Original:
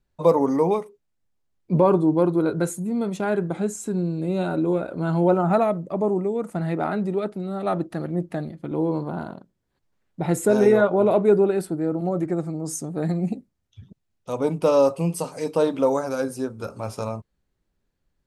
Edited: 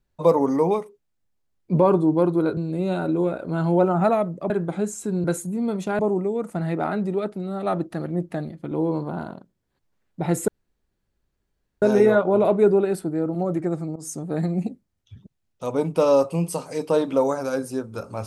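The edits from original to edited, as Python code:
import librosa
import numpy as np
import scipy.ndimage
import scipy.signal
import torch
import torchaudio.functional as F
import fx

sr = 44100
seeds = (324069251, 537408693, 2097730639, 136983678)

y = fx.edit(x, sr, fx.swap(start_s=2.57, length_s=0.75, other_s=4.06, other_length_s=1.93),
    fx.insert_room_tone(at_s=10.48, length_s=1.34),
    fx.fade_in_from(start_s=12.62, length_s=0.28, curve='qsin', floor_db=-16.5), tone=tone)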